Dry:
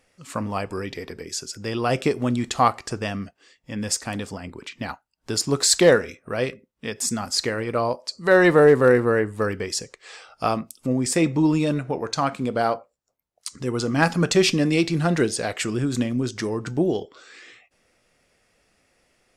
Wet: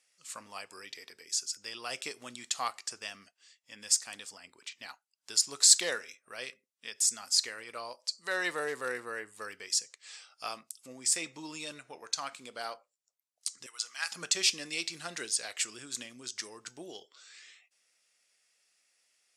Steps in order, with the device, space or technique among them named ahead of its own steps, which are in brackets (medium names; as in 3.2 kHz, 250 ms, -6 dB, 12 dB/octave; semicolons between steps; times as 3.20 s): 13.66–14.12 s: high-pass 1.3 kHz 12 dB/octave; piezo pickup straight into a mixer (low-pass 8.6 kHz 12 dB/octave; differentiator); trim +1 dB